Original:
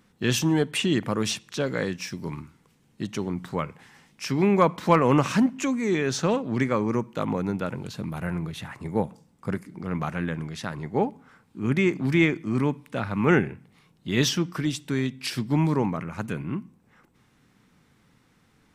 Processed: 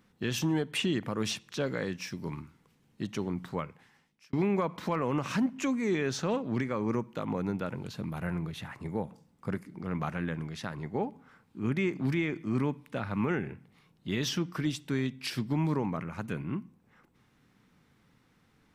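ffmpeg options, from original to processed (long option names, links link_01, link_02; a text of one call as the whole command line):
ffmpeg -i in.wav -filter_complex "[0:a]asplit=2[link_01][link_02];[link_01]atrim=end=4.33,asetpts=PTS-STARTPTS,afade=type=out:start_time=3.44:duration=0.89[link_03];[link_02]atrim=start=4.33,asetpts=PTS-STARTPTS,afade=type=in:duration=0.004:curve=hsin[link_04];[link_03][link_04]concat=n=2:v=0:a=1,equalizer=frequency=8200:width_type=o:width=0.95:gain=-4,alimiter=limit=-16dB:level=0:latency=1:release=136,volume=-4dB" out.wav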